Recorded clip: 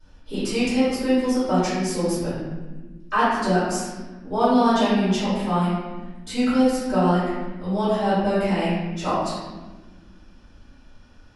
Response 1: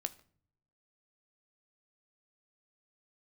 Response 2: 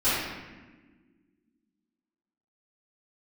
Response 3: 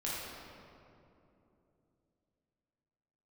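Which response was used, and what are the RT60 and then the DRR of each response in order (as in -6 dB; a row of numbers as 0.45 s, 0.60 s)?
2; no single decay rate, no single decay rate, 2.9 s; 10.0 dB, -17.0 dB, -7.5 dB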